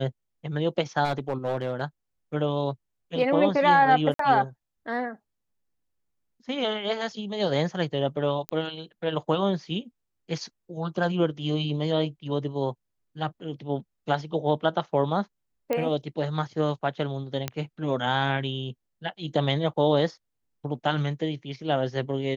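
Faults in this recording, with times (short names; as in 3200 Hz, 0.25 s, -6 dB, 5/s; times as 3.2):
1.04–1.82 clipped -22 dBFS
4.14–4.19 gap 53 ms
8.49 pop -14 dBFS
15.73 pop -14 dBFS
17.48 pop -12 dBFS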